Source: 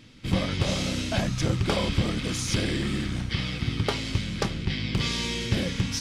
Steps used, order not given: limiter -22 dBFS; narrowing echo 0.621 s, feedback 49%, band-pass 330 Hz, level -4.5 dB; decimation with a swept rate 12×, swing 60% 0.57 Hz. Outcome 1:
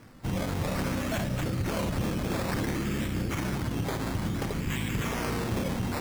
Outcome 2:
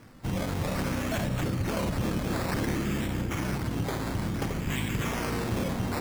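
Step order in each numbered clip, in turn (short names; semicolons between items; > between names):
narrowing echo > decimation with a swept rate > limiter; decimation with a swept rate > limiter > narrowing echo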